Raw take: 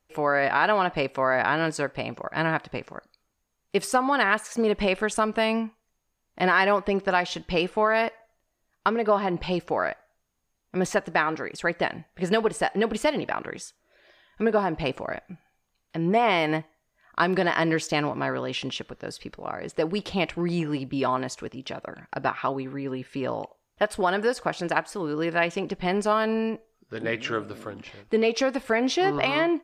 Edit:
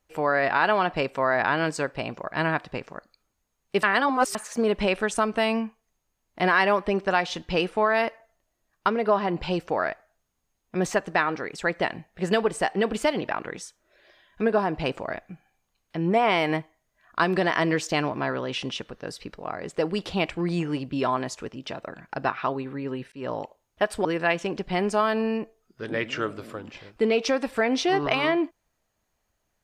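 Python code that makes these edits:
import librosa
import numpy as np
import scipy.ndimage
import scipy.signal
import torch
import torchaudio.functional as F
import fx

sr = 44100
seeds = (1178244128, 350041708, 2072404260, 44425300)

y = fx.edit(x, sr, fx.reverse_span(start_s=3.83, length_s=0.52),
    fx.fade_in_span(start_s=23.12, length_s=0.27, curve='qsin'),
    fx.cut(start_s=24.05, length_s=1.12), tone=tone)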